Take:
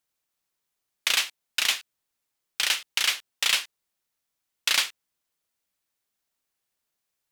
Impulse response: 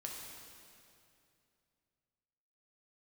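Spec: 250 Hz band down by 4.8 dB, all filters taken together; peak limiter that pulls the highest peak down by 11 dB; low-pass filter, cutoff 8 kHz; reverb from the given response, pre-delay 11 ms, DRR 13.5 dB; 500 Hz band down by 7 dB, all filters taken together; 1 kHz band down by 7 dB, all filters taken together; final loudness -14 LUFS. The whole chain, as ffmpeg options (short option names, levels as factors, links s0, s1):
-filter_complex "[0:a]lowpass=8000,equalizer=f=250:t=o:g=-4,equalizer=f=500:t=o:g=-5,equalizer=f=1000:t=o:g=-8.5,alimiter=limit=0.1:level=0:latency=1,asplit=2[s0][s1];[1:a]atrim=start_sample=2205,adelay=11[s2];[s1][s2]afir=irnorm=-1:irlink=0,volume=0.251[s3];[s0][s3]amix=inputs=2:normalize=0,volume=8.91"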